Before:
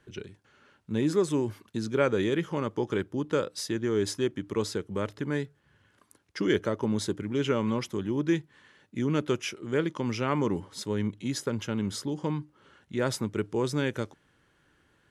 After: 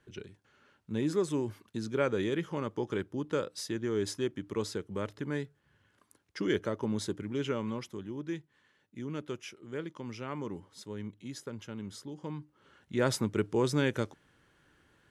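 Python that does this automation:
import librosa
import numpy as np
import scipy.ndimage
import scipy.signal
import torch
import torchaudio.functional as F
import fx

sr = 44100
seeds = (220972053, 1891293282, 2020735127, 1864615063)

y = fx.gain(x, sr, db=fx.line((7.27, -4.5), (8.21, -11.0), (12.16, -11.0), (13.02, 0.0)))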